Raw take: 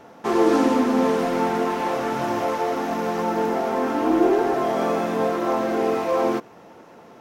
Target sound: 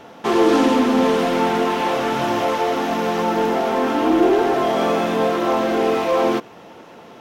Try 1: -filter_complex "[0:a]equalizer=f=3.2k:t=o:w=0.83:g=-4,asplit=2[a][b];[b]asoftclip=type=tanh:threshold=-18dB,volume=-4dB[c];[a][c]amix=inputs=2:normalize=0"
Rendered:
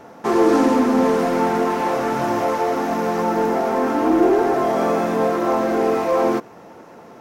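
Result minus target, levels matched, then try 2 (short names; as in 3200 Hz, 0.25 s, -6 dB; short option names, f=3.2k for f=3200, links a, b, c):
4000 Hz band -8.0 dB
-filter_complex "[0:a]equalizer=f=3.2k:t=o:w=0.83:g=7,asplit=2[a][b];[b]asoftclip=type=tanh:threshold=-18dB,volume=-4dB[c];[a][c]amix=inputs=2:normalize=0"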